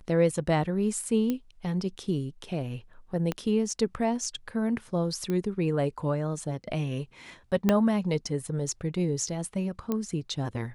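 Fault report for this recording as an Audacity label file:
1.300000	1.300000	pop -16 dBFS
3.320000	3.320000	pop -16 dBFS
5.300000	5.300000	pop -19 dBFS
7.690000	7.690000	pop -9 dBFS
9.920000	9.920000	pop -16 dBFS

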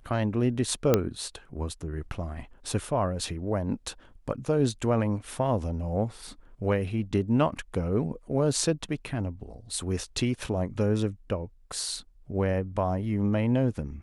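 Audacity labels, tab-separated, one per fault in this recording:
0.940000	0.940000	pop -7 dBFS

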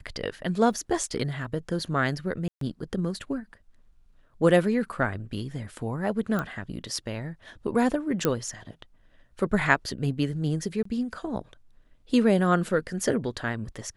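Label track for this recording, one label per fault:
0.730000	0.730000	gap 2.8 ms
2.480000	2.610000	gap 0.133 s
6.390000	6.390000	pop -16 dBFS
8.250000	8.250000	pop -9 dBFS
10.830000	10.850000	gap 24 ms

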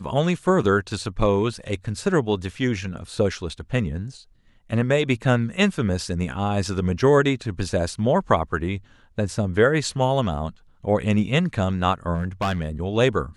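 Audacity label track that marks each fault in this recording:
12.140000	12.680000	clipped -19 dBFS

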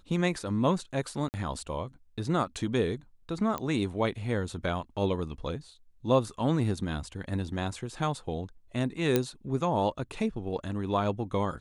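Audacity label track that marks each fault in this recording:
1.290000	1.340000	gap 49 ms
3.580000	3.580000	pop -18 dBFS
9.160000	9.160000	pop -10 dBFS

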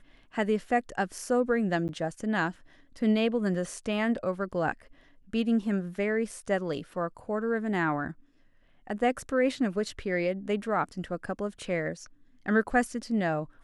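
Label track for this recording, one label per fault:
1.880000	1.890000	gap 9.2 ms

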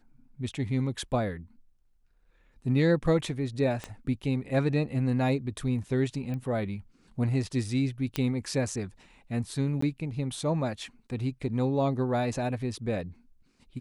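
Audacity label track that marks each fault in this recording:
3.840000	3.840000	pop -21 dBFS
6.340000	6.340000	pop -25 dBFS
8.160000	8.160000	pop -14 dBFS
9.810000	9.820000	gap 14 ms

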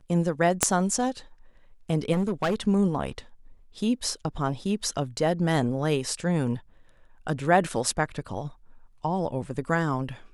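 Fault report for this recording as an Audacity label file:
0.630000	0.630000	pop -3 dBFS
2.120000	2.550000	clipped -21 dBFS

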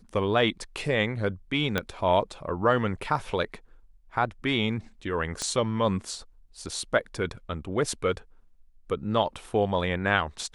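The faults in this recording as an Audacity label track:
1.780000	1.780000	pop -11 dBFS
5.420000	5.420000	pop -17 dBFS

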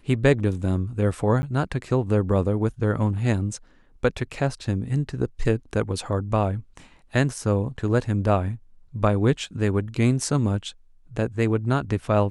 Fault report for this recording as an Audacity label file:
1.420000	1.430000	gap 10 ms

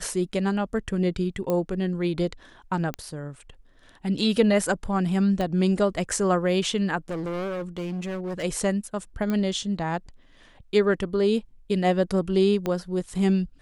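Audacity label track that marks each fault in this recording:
1.500000	1.500000	pop -14 dBFS
2.940000	2.940000	pop -16 dBFS
5.410000	5.410000	pop -16 dBFS
7.090000	8.440000	clipped -27 dBFS
9.300000	9.300000	pop -16 dBFS
12.660000	12.660000	pop -14 dBFS

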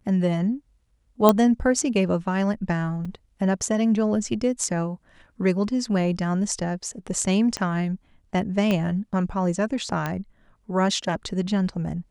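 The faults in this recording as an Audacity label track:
1.290000	1.290000	pop -3 dBFS
3.050000	3.050000	gap 4.2 ms
7.570000	7.570000	pop -14 dBFS
8.710000	8.710000	pop -11 dBFS
10.060000	10.060000	pop -13 dBFS

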